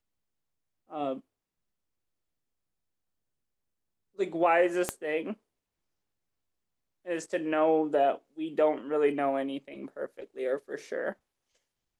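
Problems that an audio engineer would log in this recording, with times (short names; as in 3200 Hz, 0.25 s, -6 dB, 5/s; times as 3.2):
4.89 pop -13 dBFS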